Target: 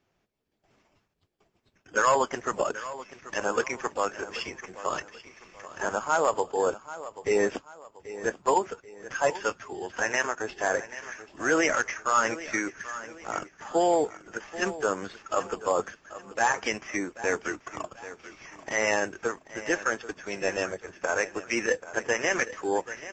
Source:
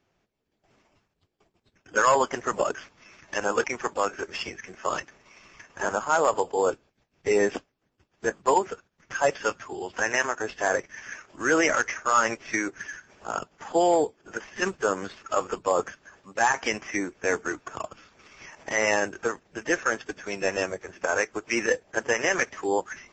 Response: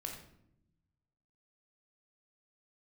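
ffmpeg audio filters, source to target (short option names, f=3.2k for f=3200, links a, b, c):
-af "aecho=1:1:785|1570|2355:0.178|0.0658|0.0243,volume=-2dB"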